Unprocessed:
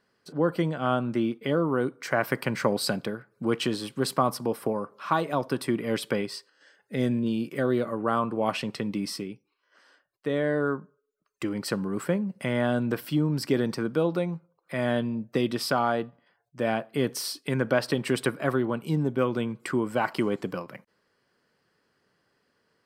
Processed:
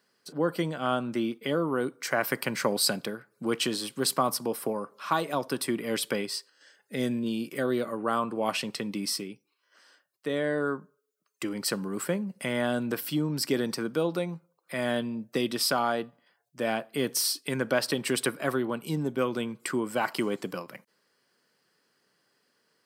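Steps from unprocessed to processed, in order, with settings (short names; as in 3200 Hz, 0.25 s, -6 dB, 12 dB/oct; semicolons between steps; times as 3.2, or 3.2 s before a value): HPF 150 Hz 12 dB/oct; high shelf 3700 Hz +11 dB; gain -2.5 dB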